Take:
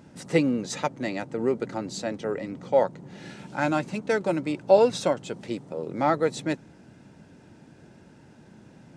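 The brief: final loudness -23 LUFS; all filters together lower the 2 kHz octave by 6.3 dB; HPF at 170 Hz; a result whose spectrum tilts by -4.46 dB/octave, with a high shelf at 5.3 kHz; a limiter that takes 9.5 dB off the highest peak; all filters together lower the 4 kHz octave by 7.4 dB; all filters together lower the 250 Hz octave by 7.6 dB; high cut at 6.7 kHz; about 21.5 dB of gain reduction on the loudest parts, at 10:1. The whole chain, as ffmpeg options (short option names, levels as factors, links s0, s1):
-af "highpass=170,lowpass=6700,equalizer=f=250:t=o:g=-9,equalizer=f=2000:t=o:g=-7,equalizer=f=4000:t=o:g=-8,highshelf=f=5300:g=3.5,acompressor=threshold=0.0158:ratio=10,volume=11.2,alimiter=limit=0.282:level=0:latency=1"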